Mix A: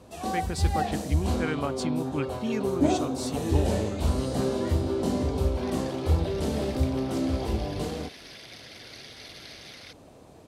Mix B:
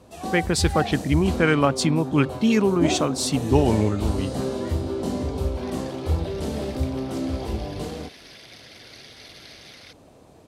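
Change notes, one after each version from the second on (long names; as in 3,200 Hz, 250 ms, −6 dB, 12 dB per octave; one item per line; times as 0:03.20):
speech +11.5 dB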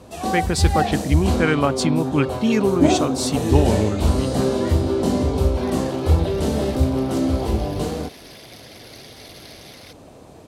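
first sound +7.0 dB
second sound: remove high-frequency loss of the air 54 metres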